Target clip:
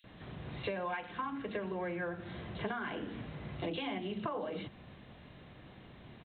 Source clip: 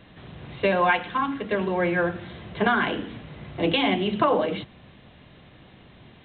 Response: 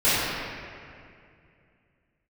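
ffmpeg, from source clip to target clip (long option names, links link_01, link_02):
-filter_complex "[0:a]acrossover=split=3300[link_01][link_02];[link_01]adelay=40[link_03];[link_03][link_02]amix=inputs=2:normalize=0,acompressor=threshold=-32dB:ratio=6,volume=-3.5dB"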